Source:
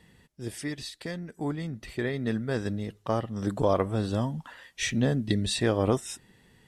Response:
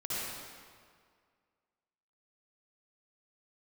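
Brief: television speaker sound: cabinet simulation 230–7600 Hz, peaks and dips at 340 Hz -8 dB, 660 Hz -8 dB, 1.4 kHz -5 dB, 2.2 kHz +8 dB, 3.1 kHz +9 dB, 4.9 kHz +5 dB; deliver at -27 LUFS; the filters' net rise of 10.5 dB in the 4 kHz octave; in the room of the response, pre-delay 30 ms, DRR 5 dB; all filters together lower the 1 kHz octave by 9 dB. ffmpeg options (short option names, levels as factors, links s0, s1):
-filter_complex "[0:a]equalizer=f=1000:t=o:g=-8.5,equalizer=f=4000:t=o:g=6.5,asplit=2[s0][s1];[1:a]atrim=start_sample=2205,adelay=30[s2];[s1][s2]afir=irnorm=-1:irlink=0,volume=0.316[s3];[s0][s3]amix=inputs=2:normalize=0,highpass=f=230:w=0.5412,highpass=f=230:w=1.3066,equalizer=f=340:t=q:w=4:g=-8,equalizer=f=660:t=q:w=4:g=-8,equalizer=f=1400:t=q:w=4:g=-5,equalizer=f=2200:t=q:w=4:g=8,equalizer=f=3100:t=q:w=4:g=9,equalizer=f=4900:t=q:w=4:g=5,lowpass=f=7600:w=0.5412,lowpass=f=7600:w=1.3066,volume=1.26"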